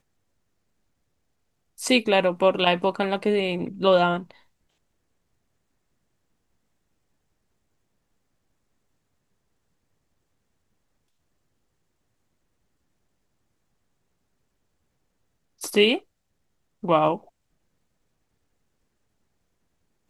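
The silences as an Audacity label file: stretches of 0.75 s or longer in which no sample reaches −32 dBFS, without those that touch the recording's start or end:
4.310000	15.620000	silence
15.980000	16.840000	silence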